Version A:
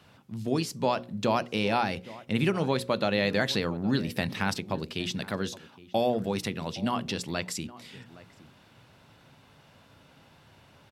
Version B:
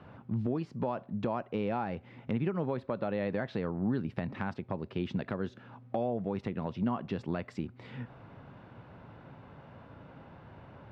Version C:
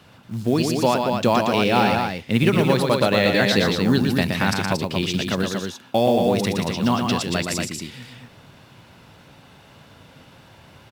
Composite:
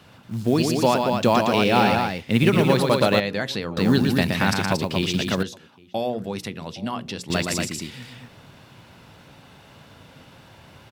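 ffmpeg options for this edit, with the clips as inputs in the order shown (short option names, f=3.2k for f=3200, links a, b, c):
-filter_complex "[0:a]asplit=2[a][b];[2:a]asplit=3[c][d][e];[c]atrim=end=3.202[f];[a]atrim=start=3.198:end=3.772[g];[d]atrim=start=3.768:end=5.432[h];[b]atrim=start=5.428:end=7.302[i];[e]atrim=start=7.298[j];[f][g]acrossfade=d=0.004:c1=hsin:c2=hsin[k];[k][h]acrossfade=d=0.004:c1=hsin:c2=hsin[l];[l][i]acrossfade=d=0.004:c1=hsin:c2=hsin[m];[m][j]acrossfade=d=0.004:c1=hsin:c2=hsin"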